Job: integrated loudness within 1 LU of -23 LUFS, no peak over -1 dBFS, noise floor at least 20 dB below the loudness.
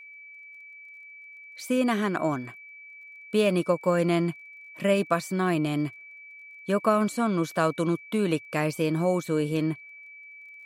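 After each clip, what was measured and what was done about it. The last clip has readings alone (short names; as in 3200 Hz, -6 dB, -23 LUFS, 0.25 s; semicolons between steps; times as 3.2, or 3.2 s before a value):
ticks 19/s; steady tone 2300 Hz; tone level -44 dBFS; loudness -26.5 LUFS; peak -10.5 dBFS; loudness target -23.0 LUFS
-> de-click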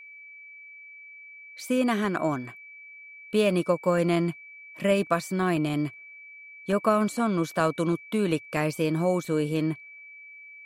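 ticks 0/s; steady tone 2300 Hz; tone level -44 dBFS
-> notch 2300 Hz, Q 30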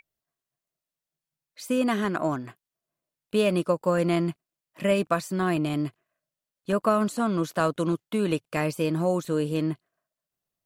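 steady tone none; loudness -26.5 LUFS; peak -10.5 dBFS; loudness target -23.0 LUFS
-> gain +3.5 dB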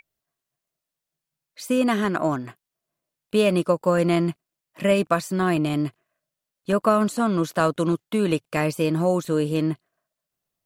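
loudness -23.0 LUFS; peak -7.0 dBFS; noise floor -86 dBFS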